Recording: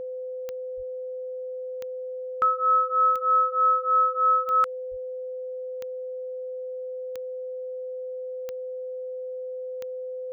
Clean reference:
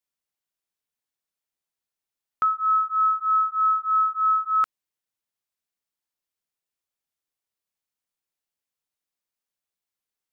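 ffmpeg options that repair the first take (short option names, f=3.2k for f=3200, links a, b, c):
-filter_complex "[0:a]adeclick=t=4,bandreject=f=510:w=30,asplit=3[a][b][c];[a]afade=t=out:st=0.76:d=0.02[d];[b]highpass=f=140:w=0.5412,highpass=f=140:w=1.3066,afade=t=in:st=0.76:d=0.02,afade=t=out:st=0.88:d=0.02[e];[c]afade=t=in:st=0.88:d=0.02[f];[d][e][f]amix=inputs=3:normalize=0,asplit=3[g][h][i];[g]afade=t=out:st=4.9:d=0.02[j];[h]highpass=f=140:w=0.5412,highpass=f=140:w=1.3066,afade=t=in:st=4.9:d=0.02,afade=t=out:st=5.02:d=0.02[k];[i]afade=t=in:st=5.02:d=0.02[l];[j][k][l]amix=inputs=3:normalize=0"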